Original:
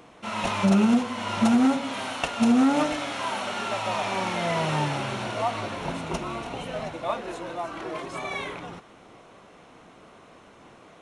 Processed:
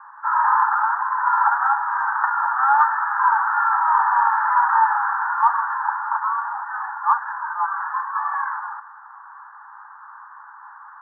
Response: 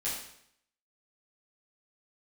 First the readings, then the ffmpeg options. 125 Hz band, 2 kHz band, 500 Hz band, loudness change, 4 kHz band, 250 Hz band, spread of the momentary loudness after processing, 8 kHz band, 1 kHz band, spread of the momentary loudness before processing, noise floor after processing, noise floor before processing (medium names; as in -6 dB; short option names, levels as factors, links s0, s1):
under -40 dB, +9.5 dB, under -25 dB, +6.5 dB, under -30 dB, under -40 dB, 8 LU, under -40 dB, +13.0 dB, 13 LU, -43 dBFS, -52 dBFS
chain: -af "asuperpass=centerf=1200:order=20:qfactor=1.3,acontrast=42,volume=2.82"